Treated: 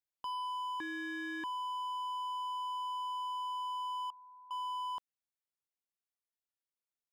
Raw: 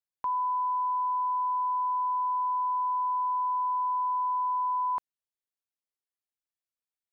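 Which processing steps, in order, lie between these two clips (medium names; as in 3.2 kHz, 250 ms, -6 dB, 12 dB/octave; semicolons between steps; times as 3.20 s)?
gain riding 0.5 s; 0.80–1.44 s: ring modulator 680 Hz; overload inside the chain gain 31 dB; 4.10–4.51 s: Gaussian low-pass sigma 14 samples; trim -6 dB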